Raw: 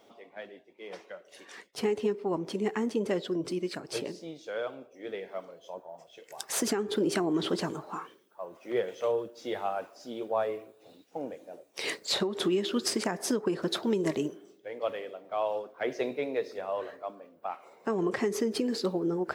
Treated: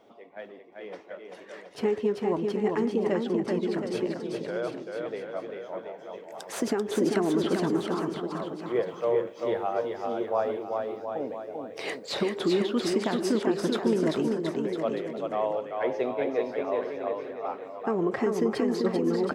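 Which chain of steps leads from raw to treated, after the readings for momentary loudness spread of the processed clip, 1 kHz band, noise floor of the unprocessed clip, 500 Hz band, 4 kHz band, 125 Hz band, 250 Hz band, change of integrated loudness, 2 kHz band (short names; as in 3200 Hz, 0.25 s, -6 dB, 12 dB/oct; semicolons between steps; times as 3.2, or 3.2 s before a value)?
13 LU, +3.5 dB, -61 dBFS, +4.5 dB, -2.5 dB, +4.5 dB, +4.5 dB, +3.5 dB, +1.5 dB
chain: high shelf 3100 Hz -12 dB; bouncing-ball echo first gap 0.39 s, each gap 0.85×, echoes 5; gain +2.5 dB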